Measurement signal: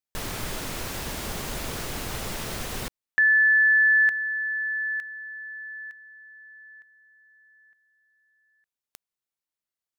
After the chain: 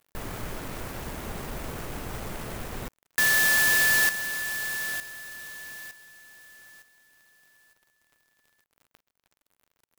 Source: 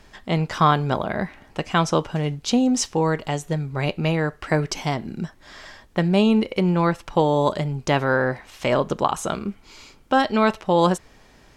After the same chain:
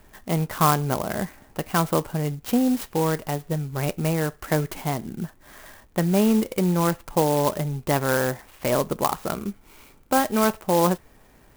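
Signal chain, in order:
high-frequency loss of the air 150 metres
surface crackle 80 per second −46 dBFS
converter with an unsteady clock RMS 0.061 ms
level −1.5 dB

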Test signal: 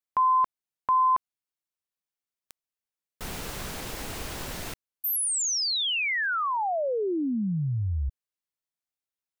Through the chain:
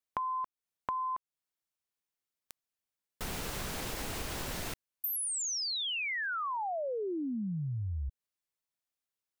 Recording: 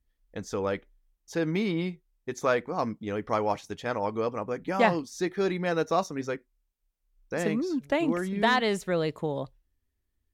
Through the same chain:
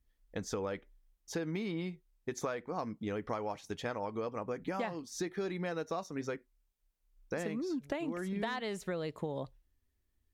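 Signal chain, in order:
downward compressor 12 to 1, threshold −33 dBFS

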